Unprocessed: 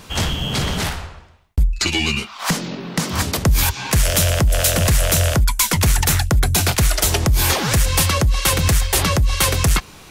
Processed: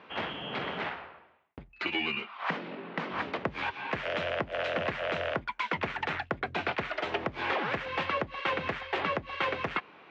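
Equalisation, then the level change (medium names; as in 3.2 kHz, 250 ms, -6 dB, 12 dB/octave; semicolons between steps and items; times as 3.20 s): high-pass 330 Hz 12 dB/octave; inverse Chebyshev low-pass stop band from 12 kHz, stop band 80 dB; -7.5 dB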